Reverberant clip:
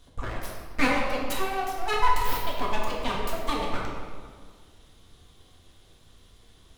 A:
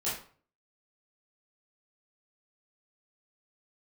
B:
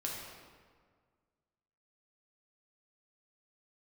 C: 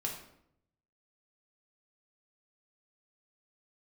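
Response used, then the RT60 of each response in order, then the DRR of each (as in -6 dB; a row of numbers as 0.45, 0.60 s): B; 0.45, 1.8, 0.75 s; -10.5, -3.0, -1.0 dB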